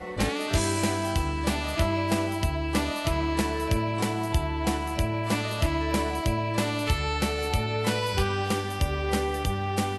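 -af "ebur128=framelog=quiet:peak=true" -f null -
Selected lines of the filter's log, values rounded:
Integrated loudness:
  I:         -27.2 LUFS
  Threshold: -37.2 LUFS
Loudness range:
  LRA:         0.6 LU
  Threshold: -47.2 LUFS
  LRA low:   -27.5 LUFS
  LRA high:  -26.9 LUFS
True peak:
  Peak:      -10.8 dBFS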